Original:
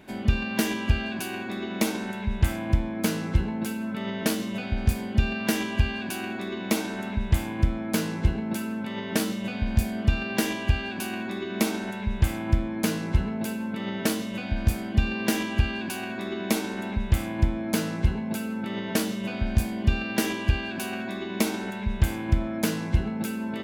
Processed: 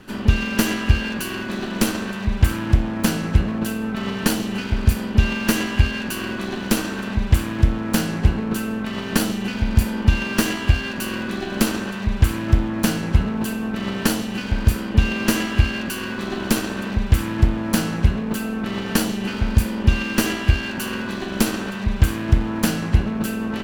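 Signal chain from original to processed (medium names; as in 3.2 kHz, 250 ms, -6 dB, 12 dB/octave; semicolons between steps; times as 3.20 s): comb filter that takes the minimum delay 0.69 ms; trim +6.5 dB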